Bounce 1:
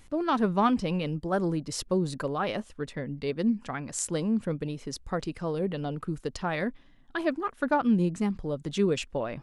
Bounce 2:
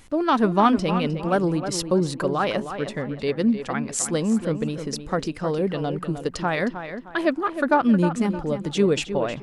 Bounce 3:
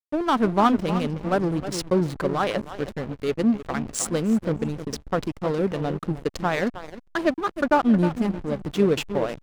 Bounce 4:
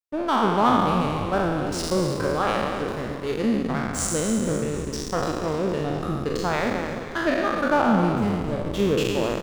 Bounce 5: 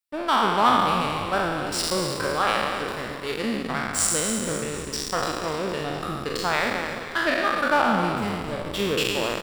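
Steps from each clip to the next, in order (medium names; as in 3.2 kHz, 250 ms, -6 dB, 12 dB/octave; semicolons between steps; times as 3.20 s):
bass shelf 130 Hz -5 dB; on a send: tape echo 310 ms, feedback 37%, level -8.5 dB, low-pass 3.1 kHz; on the sum: trim +6.5 dB
in parallel at -2 dB: gain riding within 3 dB 2 s; on the sum: hysteresis with a dead band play -18.5 dBFS; trim -5 dB
spectral sustain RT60 1.61 s; frequency-shifting echo 252 ms, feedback 60%, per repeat -78 Hz, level -11 dB; trim -4 dB
tilt shelf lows -6.5 dB, about 800 Hz; band-stop 6.4 kHz, Q 5.6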